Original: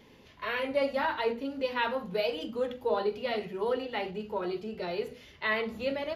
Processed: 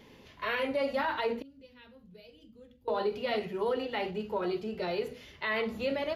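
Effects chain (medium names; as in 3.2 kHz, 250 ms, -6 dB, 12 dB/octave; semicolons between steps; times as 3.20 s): 1.42–2.88 s: amplifier tone stack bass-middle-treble 10-0-1; peak limiter -23.5 dBFS, peak gain reduction 6.5 dB; trim +1.5 dB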